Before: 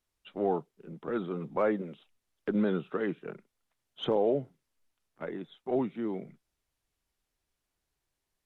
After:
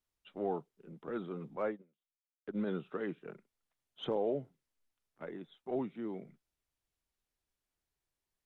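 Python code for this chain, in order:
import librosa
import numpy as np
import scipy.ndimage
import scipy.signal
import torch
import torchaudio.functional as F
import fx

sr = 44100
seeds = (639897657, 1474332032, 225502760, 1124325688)

y = fx.upward_expand(x, sr, threshold_db=-45.0, expansion=2.5, at=(1.55, 2.66), fade=0.02)
y = F.gain(torch.from_numpy(y), -6.5).numpy()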